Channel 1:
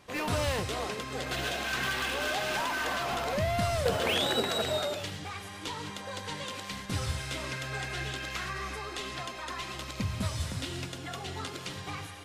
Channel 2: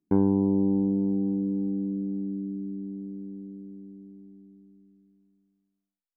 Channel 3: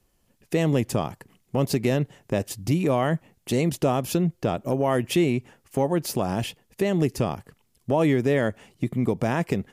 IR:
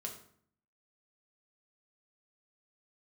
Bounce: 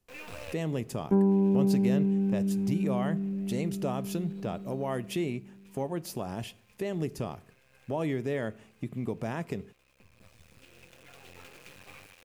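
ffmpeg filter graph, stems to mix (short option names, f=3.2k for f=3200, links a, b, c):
-filter_complex "[0:a]adynamicequalizer=threshold=0.00447:dfrequency=3900:dqfactor=0.82:tfrequency=3900:tqfactor=0.82:attack=5:release=100:ratio=0.375:range=2:mode=cutabove:tftype=bell,acrusher=bits=4:dc=4:mix=0:aa=0.000001,equalizer=f=500:t=o:w=0.33:g=9,equalizer=f=1.6k:t=o:w=0.33:g=3,equalizer=f=2.5k:t=o:w=0.33:g=12,volume=-11.5dB[a];[1:a]aecho=1:1:5:0.96,adelay=1000,volume=-4dB[b];[2:a]volume=-11.5dB,asplit=3[c][d][e];[d]volume=-10.5dB[f];[e]apad=whole_len=540198[g];[a][g]sidechaincompress=threshold=-48dB:ratio=16:attack=20:release=1440[h];[3:a]atrim=start_sample=2205[i];[f][i]afir=irnorm=-1:irlink=0[j];[h][b][c][j]amix=inputs=4:normalize=0"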